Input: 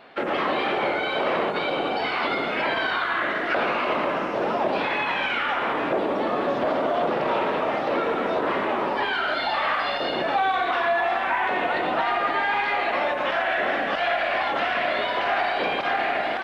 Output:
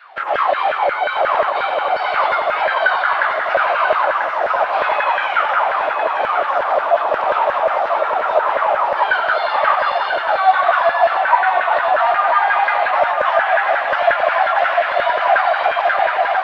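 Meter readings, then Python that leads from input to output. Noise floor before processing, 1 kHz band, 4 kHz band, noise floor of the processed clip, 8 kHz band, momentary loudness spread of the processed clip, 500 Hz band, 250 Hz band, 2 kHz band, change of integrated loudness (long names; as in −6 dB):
−27 dBFS, +9.5 dB, +1.0 dB, −22 dBFS, can't be measured, 4 LU, +6.5 dB, below −10 dB, +7.0 dB, +7.5 dB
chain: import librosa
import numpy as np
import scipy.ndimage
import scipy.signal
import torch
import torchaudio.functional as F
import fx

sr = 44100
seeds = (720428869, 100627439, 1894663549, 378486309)

y = fx.filter_lfo_highpass(x, sr, shape='saw_down', hz=5.6, low_hz=570.0, high_hz=1600.0, q=7.1)
y = fx.echo_feedback(y, sr, ms=990, feedback_pct=38, wet_db=-6.5)
y = F.gain(torch.from_numpy(y), -1.0).numpy()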